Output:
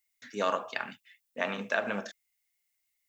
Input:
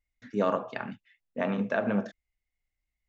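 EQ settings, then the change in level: tilt +4.5 dB/oct; 0.0 dB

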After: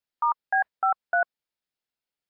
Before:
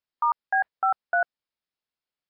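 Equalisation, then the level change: notch 1100 Hz, Q 11; 0.0 dB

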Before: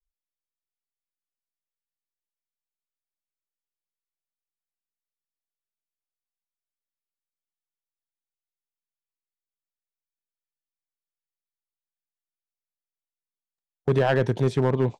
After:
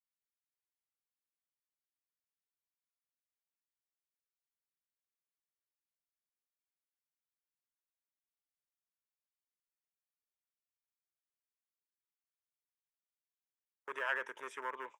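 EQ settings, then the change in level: ladder high-pass 730 Hz, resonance 50%; fixed phaser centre 1800 Hz, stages 4; +3.0 dB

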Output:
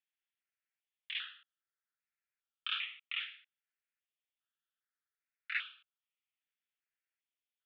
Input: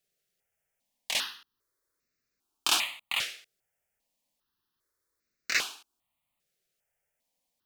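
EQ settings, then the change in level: Chebyshev band-pass 1300–3500 Hz, order 4; -7.0 dB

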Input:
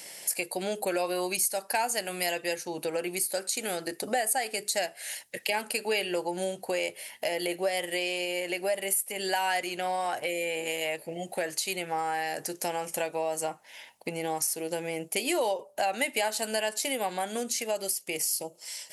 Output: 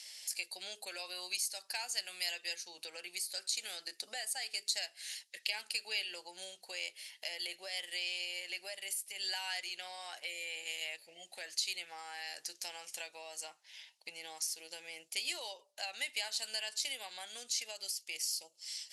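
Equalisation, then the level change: band-pass 4400 Hz, Q 1.6; 0.0 dB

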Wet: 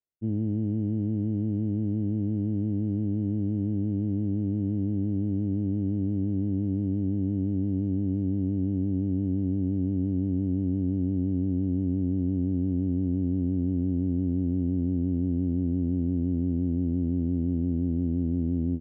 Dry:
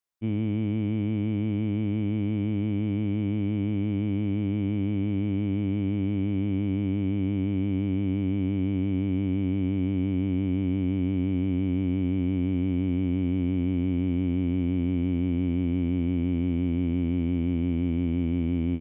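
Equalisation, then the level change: running mean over 38 samples; air absorption 200 m; 0.0 dB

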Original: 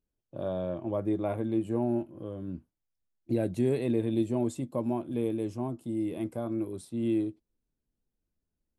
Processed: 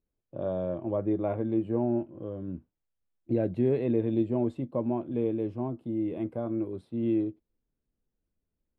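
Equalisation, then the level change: air absorption 440 m; bell 490 Hz +3 dB; high shelf 4800 Hz +5.5 dB; +1.0 dB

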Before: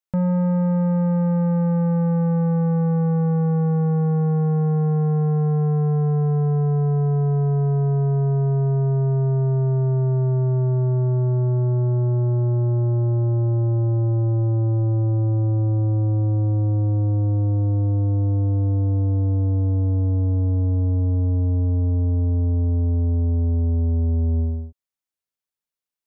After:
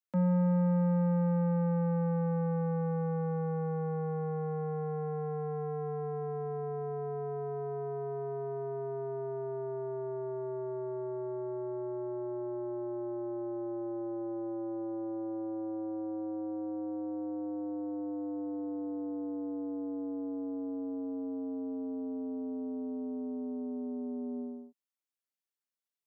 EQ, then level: Chebyshev high-pass 180 Hz, order 5; -6.0 dB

